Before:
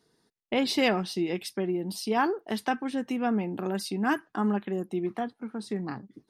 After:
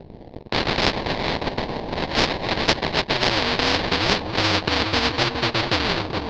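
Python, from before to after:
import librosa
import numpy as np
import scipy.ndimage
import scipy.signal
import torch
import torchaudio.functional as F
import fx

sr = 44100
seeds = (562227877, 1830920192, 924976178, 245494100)

p1 = fx.dmg_crackle(x, sr, seeds[0], per_s=280.0, level_db=-50.0)
p2 = fx.rider(p1, sr, range_db=3, speed_s=0.5)
p3 = p1 + F.gain(torch.from_numpy(p2), 2.0).numpy()
p4 = p3 + 10.0 ** (-22.0 / 20.0) * np.pad(p3, (int(265 * sr / 1000.0), 0))[:len(p3)]
p5 = fx.filter_sweep_highpass(p4, sr, from_hz=2200.0, to_hz=230.0, start_s=1.04, end_s=4.27, q=2.8)
p6 = fx.sample_hold(p5, sr, seeds[1], rate_hz=1300.0, jitter_pct=20)
p7 = fx.peak_eq(p6, sr, hz=1300.0, db=-14.0, octaves=0.86)
p8 = p7 * np.sin(2.0 * np.pi * 110.0 * np.arange(len(p7)) / sr)
p9 = scipy.signal.sosfilt(scipy.signal.ellip(4, 1.0, 60, 4400.0, 'lowpass', fs=sr, output='sos'), p8)
p10 = fx.peak_eq(p9, sr, hz=2800.0, db=-11.0, octaves=2.1)
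p11 = p10 + fx.echo_single(p10, sr, ms=416, db=-14.0, dry=0)
p12 = fx.spectral_comp(p11, sr, ratio=4.0)
y = F.gain(torch.from_numpy(p12), 3.0).numpy()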